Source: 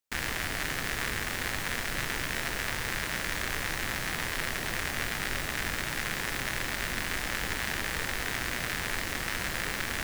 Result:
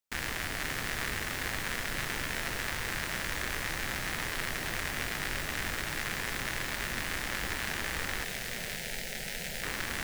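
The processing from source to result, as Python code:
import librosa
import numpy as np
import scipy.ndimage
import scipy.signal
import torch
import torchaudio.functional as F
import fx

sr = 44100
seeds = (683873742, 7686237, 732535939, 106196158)

y = fx.fixed_phaser(x, sr, hz=300.0, stages=6, at=(8.24, 9.63))
y = y + 10.0 ** (-9.5 / 20.0) * np.pad(y, (int(524 * sr / 1000.0), 0))[:len(y)]
y = y * librosa.db_to_amplitude(-2.5)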